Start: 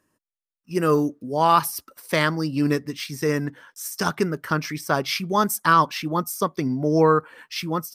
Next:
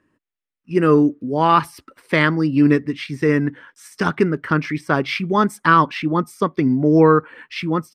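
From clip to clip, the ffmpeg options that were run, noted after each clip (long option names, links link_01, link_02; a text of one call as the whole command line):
ffmpeg -i in.wav -af "firequalizer=gain_entry='entry(200,0);entry(280,3);entry(630,-5);entry(2000,1);entry(5900,-16);entry(8500,-14);entry(13000,-26)':delay=0.05:min_phase=1,volume=5.5dB" out.wav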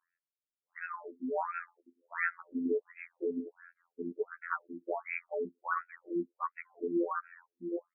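ffmpeg -i in.wav -af "afftfilt=real='hypot(re,im)*cos(PI*b)':imag='0':win_size=2048:overlap=0.75,afftfilt=real='re*between(b*sr/1024,280*pow(1900/280,0.5+0.5*sin(2*PI*1.4*pts/sr))/1.41,280*pow(1900/280,0.5+0.5*sin(2*PI*1.4*pts/sr))*1.41)':imag='im*between(b*sr/1024,280*pow(1900/280,0.5+0.5*sin(2*PI*1.4*pts/sr))/1.41,280*pow(1900/280,0.5+0.5*sin(2*PI*1.4*pts/sr))*1.41)':win_size=1024:overlap=0.75,volume=-8dB" out.wav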